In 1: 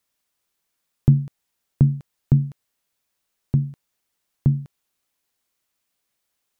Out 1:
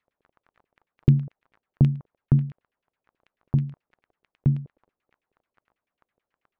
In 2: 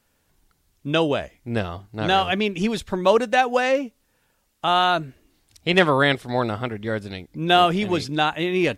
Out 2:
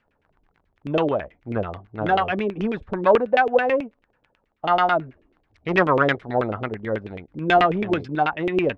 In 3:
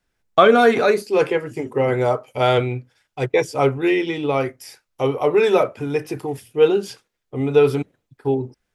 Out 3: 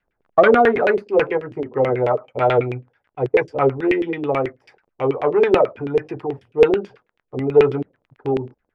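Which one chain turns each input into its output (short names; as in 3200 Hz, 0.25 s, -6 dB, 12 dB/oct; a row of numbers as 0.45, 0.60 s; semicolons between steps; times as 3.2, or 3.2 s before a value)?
self-modulated delay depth 0.097 ms; crackle 14/s -36 dBFS; LFO low-pass saw down 9.2 Hz 370–2800 Hz; gain -2.5 dB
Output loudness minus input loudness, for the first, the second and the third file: -2.5, -0.5, +0.5 LU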